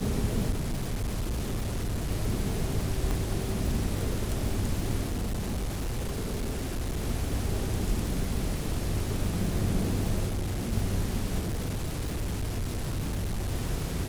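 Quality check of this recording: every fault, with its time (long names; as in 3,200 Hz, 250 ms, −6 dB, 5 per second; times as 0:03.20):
surface crackle 410 per second −34 dBFS
0:00.50–0:02.09: clipping −26.5 dBFS
0:03.11: click
0:05.08–0:07.02: clipping −27 dBFS
0:10.27–0:10.73: clipping −27 dBFS
0:11.39–0:13.52: clipping −27 dBFS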